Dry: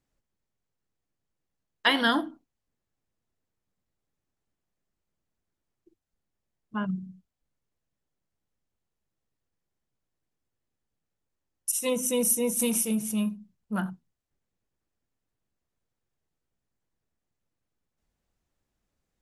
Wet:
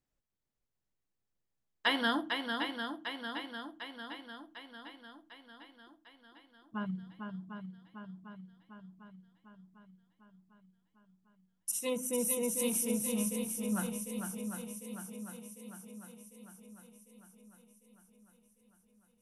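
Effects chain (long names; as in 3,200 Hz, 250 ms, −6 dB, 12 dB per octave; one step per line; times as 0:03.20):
0:11.97–0:12.43: parametric band 4,400 Hz −9.5 dB 1.3 octaves
feedback echo with a long and a short gap by turns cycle 750 ms, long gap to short 1.5 to 1, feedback 57%, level −5.5 dB
level −7 dB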